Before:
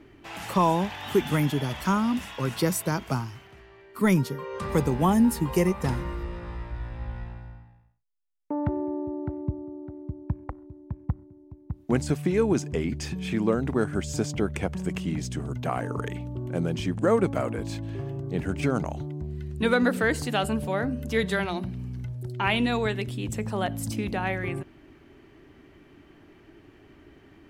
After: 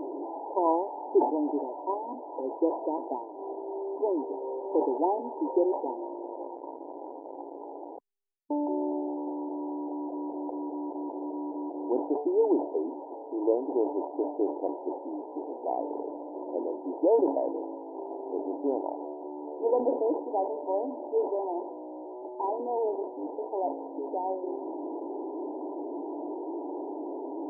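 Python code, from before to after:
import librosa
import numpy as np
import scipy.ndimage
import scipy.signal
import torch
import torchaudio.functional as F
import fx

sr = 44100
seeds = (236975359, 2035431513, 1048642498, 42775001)

y = fx.delta_mod(x, sr, bps=16000, step_db=-26.5)
y = fx.brickwall_bandpass(y, sr, low_hz=270.0, high_hz=1000.0)
y = fx.sustainer(y, sr, db_per_s=110.0)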